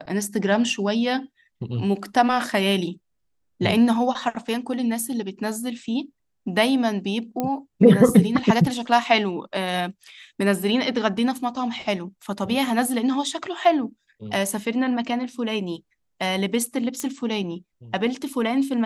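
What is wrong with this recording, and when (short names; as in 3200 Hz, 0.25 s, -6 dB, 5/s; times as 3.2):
7.4 pop -12 dBFS
17 pop -12 dBFS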